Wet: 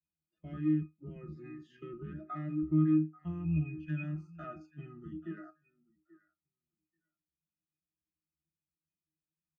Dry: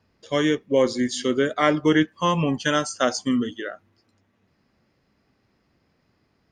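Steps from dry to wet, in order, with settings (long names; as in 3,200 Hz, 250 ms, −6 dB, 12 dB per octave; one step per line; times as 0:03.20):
sub-octave generator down 1 octave, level −2 dB
tempo change 0.68×
downward compressor 10 to 1, threshold −22 dBFS, peak gain reduction 11 dB
graphic EQ with 10 bands 125 Hz −3 dB, 250 Hz +4 dB, 500 Hz −6 dB, 1,000 Hz −9 dB, 2,000 Hz +12 dB, 4,000 Hz −10 dB, 8,000 Hz −11 dB
leveller curve on the samples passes 1
comb filter 5.6 ms, depth 63%
on a send: repeating echo 835 ms, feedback 27%, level −18.5 dB
on the sum: noise reduction from a noise print of the clip's start 18 dB
resonances in every octave D#, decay 0.2 s
level −3 dB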